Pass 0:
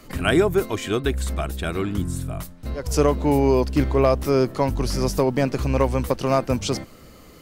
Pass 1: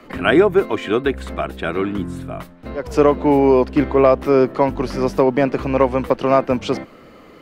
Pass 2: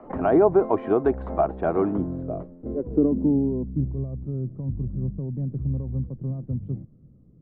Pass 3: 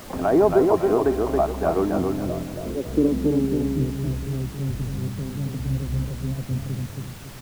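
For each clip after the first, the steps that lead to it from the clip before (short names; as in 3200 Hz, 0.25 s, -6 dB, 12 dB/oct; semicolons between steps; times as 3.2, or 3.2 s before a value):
three-band isolator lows -13 dB, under 190 Hz, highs -18 dB, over 3200 Hz; gain +6 dB
limiter -8 dBFS, peak gain reduction 6.5 dB; low-pass sweep 810 Hz -> 130 Hz, 1.82–3.93; gain -3 dB
on a send: feedback echo 0.276 s, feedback 36%, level -3.5 dB; on the sum: added noise pink -42 dBFS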